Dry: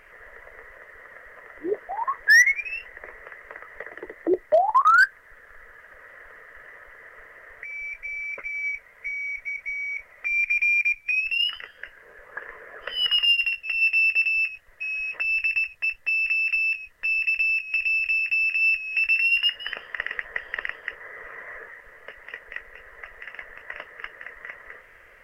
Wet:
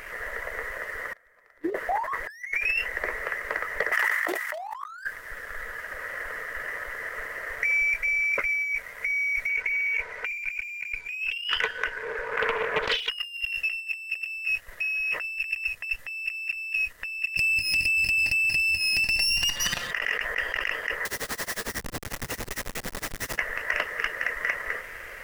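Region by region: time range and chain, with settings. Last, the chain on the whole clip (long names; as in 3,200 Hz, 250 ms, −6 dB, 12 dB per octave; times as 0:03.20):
0:01.13–0:01.71: notch filter 2,800 Hz, Q 10 + expander for the loud parts 2.5 to 1, over −40 dBFS
0:03.92–0:04.88: high-pass filter 960 Hz 24 dB per octave + background raised ahead of every attack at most 22 dB per second
0:09.49–0:13.10: low-pass filter 4,100 Hz + hollow resonant body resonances 450/950/1,500 Hz, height 13 dB, ringing for 60 ms + highs frequency-modulated by the lows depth 0.44 ms
0:17.37–0:19.91: lower of the sound and its delayed copy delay 5.7 ms + downward compressor, threshold −34 dBFS + single-tap delay 140 ms −19.5 dB
0:21.05–0:23.38: comparator with hysteresis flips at −45 dBFS + amplitude tremolo 11 Hz, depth 93%
whole clip: high-shelf EQ 4,400 Hz +8.5 dB; compressor whose output falls as the input rises −33 dBFS, ratio −1; leveller curve on the samples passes 1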